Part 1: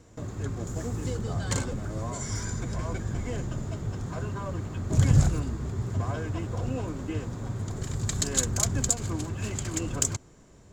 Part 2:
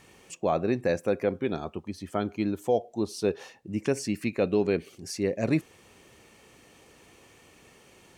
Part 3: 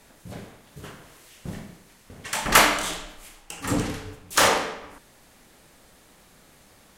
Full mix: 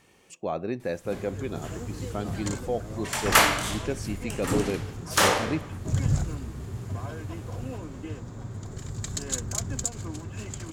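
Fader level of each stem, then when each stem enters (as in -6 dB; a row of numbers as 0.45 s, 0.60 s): -4.5 dB, -4.5 dB, -2.5 dB; 0.95 s, 0.00 s, 0.80 s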